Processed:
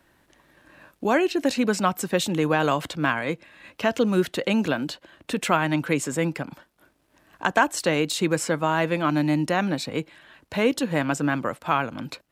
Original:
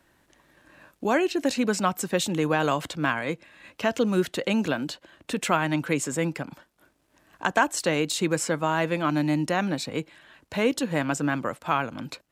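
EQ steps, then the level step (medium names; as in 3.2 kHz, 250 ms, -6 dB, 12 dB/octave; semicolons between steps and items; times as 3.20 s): peaking EQ 7.1 kHz -3 dB 0.77 oct; +2.0 dB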